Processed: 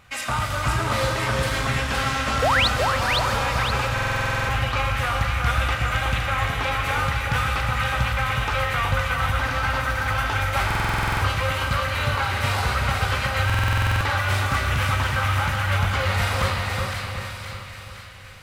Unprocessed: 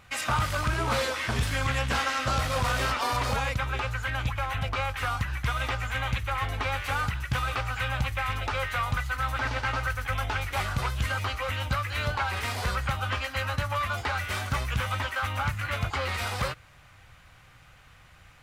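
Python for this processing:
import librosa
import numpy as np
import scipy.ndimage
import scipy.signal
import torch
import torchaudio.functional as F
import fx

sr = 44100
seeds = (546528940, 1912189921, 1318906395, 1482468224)

y = fx.rider(x, sr, range_db=10, speed_s=0.5)
y = fx.rev_schroeder(y, sr, rt60_s=2.6, comb_ms=28, drr_db=4.0)
y = fx.spec_paint(y, sr, seeds[0], shape='rise', start_s=2.42, length_s=0.26, low_hz=450.0, high_hz=4700.0, level_db=-22.0)
y = fx.echo_split(y, sr, split_hz=1600.0, low_ms=370, high_ms=516, feedback_pct=52, wet_db=-3.5)
y = fx.buffer_glitch(y, sr, at_s=(3.93, 10.66, 13.45), block=2048, repeats=11)
y = y * librosa.db_to_amplitude(2.5)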